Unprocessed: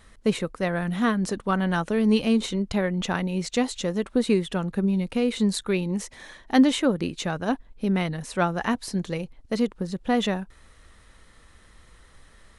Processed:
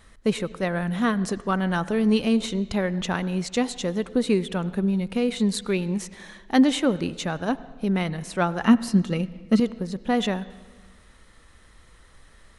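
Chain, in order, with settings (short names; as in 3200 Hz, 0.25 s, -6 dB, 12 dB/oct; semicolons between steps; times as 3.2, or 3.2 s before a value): 8.65–9.6 small resonant body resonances 220/1300/2800 Hz, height 12 dB; reverb RT60 1.4 s, pre-delay 73 ms, DRR 17 dB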